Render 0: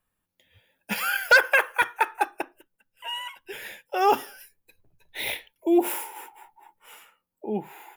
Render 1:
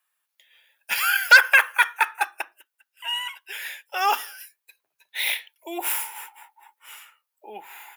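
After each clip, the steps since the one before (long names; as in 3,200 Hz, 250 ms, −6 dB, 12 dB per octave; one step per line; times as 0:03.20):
high-pass filter 1,200 Hz 12 dB per octave
level +6 dB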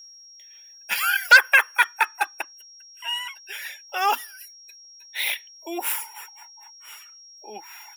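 dynamic equaliser 240 Hz, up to +7 dB, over −50 dBFS, Q 1.8
steady tone 5,600 Hz −43 dBFS
reverb reduction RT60 0.62 s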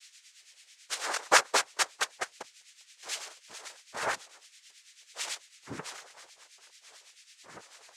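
cochlear-implant simulation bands 3
two-band tremolo in antiphase 9.1 Hz, depth 70%, crossover 1,200 Hz
level −7 dB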